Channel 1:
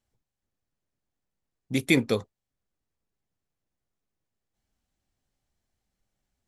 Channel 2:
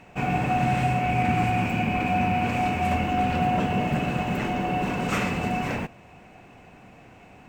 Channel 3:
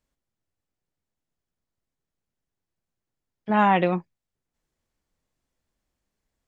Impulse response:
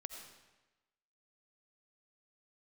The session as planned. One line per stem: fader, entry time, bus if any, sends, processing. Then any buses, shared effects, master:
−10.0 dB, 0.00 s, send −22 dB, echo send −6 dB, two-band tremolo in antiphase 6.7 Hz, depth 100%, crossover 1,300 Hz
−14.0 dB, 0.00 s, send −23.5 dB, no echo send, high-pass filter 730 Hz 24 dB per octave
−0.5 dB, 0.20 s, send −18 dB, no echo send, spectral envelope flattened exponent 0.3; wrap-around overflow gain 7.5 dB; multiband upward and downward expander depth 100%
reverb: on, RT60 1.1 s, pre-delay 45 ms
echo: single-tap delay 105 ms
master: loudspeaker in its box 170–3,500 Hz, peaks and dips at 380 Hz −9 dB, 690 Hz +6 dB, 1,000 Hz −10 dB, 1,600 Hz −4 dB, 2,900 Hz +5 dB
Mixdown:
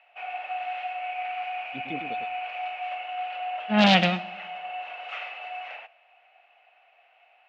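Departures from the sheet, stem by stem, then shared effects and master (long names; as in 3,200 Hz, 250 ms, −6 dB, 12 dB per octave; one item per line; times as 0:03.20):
stem 2 −14.0 dB → −7.5 dB
reverb return +7.5 dB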